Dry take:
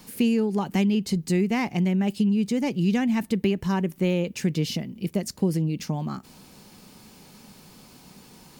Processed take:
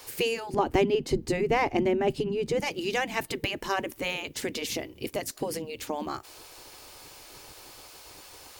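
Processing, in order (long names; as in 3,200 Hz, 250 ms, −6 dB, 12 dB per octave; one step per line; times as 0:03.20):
0:00.54–0:02.60: spectral tilt −3 dB per octave
gate on every frequency bin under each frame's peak −10 dB weak
level +4.5 dB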